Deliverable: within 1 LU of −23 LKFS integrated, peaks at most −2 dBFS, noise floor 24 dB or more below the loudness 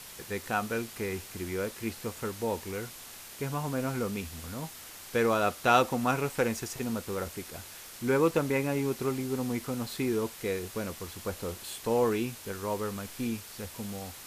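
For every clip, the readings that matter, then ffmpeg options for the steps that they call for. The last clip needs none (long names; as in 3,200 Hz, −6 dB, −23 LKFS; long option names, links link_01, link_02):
background noise floor −47 dBFS; target noise floor −56 dBFS; integrated loudness −32.0 LKFS; sample peak −9.0 dBFS; target loudness −23.0 LKFS
→ -af "afftdn=noise_reduction=9:noise_floor=-47"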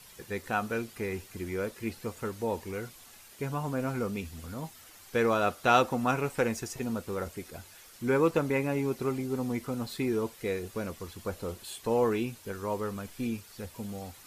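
background noise floor −53 dBFS; target noise floor −56 dBFS
→ -af "afftdn=noise_reduction=6:noise_floor=-53"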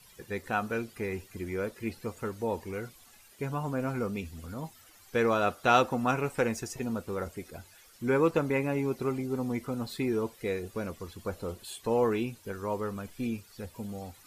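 background noise floor −57 dBFS; integrated loudness −32.0 LKFS; sample peak −9.0 dBFS; target loudness −23.0 LKFS
→ -af "volume=9dB,alimiter=limit=-2dB:level=0:latency=1"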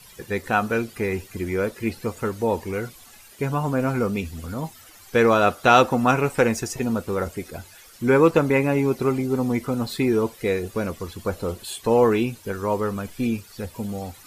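integrated loudness −23.0 LKFS; sample peak −2.0 dBFS; background noise floor −48 dBFS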